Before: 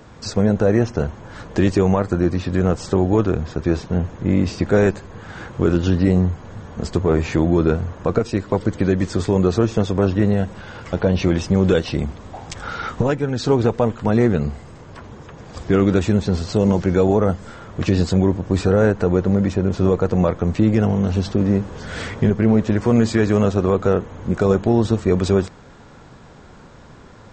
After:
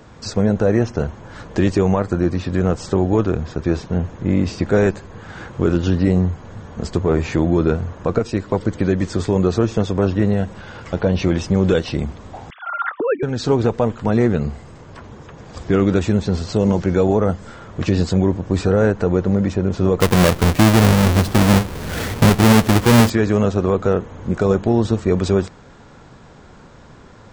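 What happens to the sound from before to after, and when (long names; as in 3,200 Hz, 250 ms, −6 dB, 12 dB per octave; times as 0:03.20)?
0:12.50–0:13.23: three sine waves on the formant tracks
0:20.00–0:23.10: each half-wave held at its own peak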